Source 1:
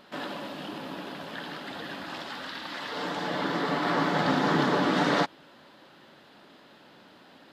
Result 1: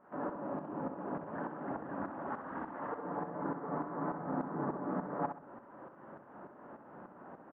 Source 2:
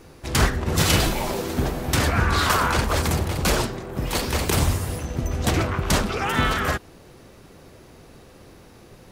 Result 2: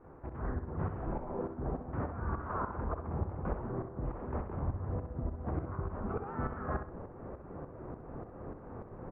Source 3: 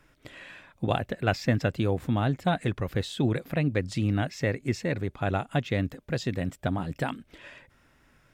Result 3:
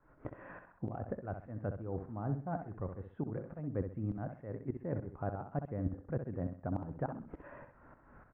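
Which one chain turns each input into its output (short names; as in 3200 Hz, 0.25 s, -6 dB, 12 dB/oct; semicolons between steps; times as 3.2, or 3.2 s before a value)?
inverse Chebyshev low-pass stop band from 4100 Hz, stop band 60 dB; reverse; compressor 5:1, threshold -38 dBFS; reverse; tremolo saw up 3.4 Hz, depth 90%; feedback echo 64 ms, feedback 30%, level -8 dB; mismatched tape noise reduction encoder only; gain +5.5 dB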